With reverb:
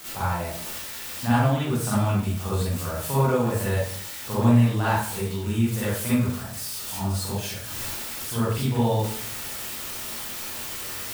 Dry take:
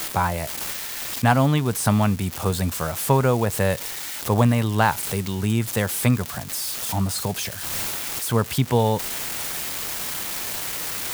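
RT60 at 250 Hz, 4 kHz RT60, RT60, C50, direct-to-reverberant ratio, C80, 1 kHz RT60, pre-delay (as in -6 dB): 0.70 s, 0.45 s, 0.55 s, -3.5 dB, -10.0 dB, 2.5 dB, 0.50 s, 39 ms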